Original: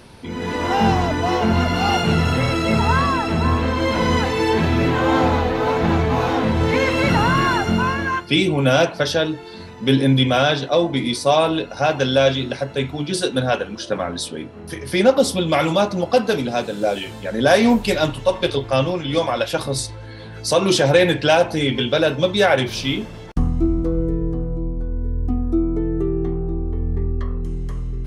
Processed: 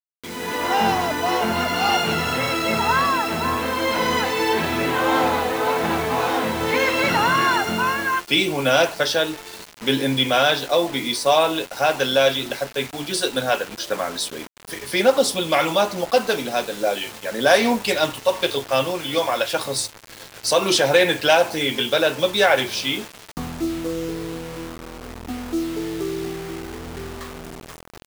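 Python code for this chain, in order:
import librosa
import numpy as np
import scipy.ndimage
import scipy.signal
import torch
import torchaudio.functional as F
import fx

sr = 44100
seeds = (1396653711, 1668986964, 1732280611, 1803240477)

y = fx.highpass(x, sr, hz=570.0, slope=6)
y = fx.quant_dither(y, sr, seeds[0], bits=6, dither='none')
y = F.gain(torch.from_numpy(y), 1.5).numpy()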